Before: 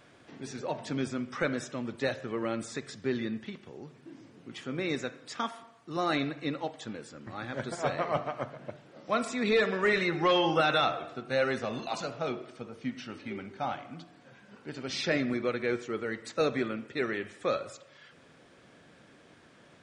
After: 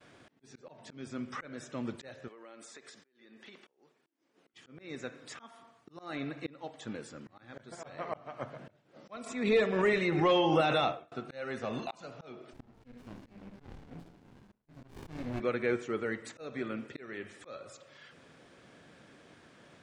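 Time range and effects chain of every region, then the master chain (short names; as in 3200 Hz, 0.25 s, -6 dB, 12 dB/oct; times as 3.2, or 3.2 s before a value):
2.28–4.54 HPF 400 Hz + compressor 10:1, threshold -47 dBFS
9.16–11.12 expander -30 dBFS + dynamic EQ 1500 Hz, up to -7 dB, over -43 dBFS, Q 1.9 + backwards sustainer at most 48 dB/s
12.53–15.4 doubler 25 ms -5 dB + tapped delay 63/72 ms -9.5/-18.5 dB + running maximum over 65 samples
whole clip: auto swell 0.467 s; expander -58 dBFS; dynamic EQ 4700 Hz, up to -8 dB, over -55 dBFS, Q 1.6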